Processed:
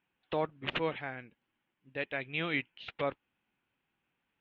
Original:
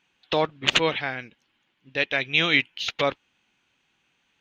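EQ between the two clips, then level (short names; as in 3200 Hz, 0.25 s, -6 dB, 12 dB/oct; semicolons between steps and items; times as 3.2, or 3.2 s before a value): air absorption 490 m; -7.5 dB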